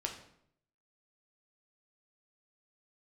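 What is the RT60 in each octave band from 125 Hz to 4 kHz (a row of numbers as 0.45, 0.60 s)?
0.85, 0.80, 0.75, 0.65, 0.60, 0.50 s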